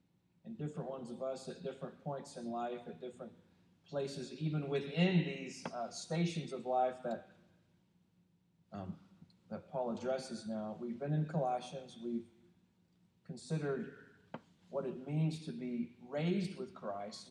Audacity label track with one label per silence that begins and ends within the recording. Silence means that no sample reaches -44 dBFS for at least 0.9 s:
7.190000	8.730000	silence
12.210000	13.300000	silence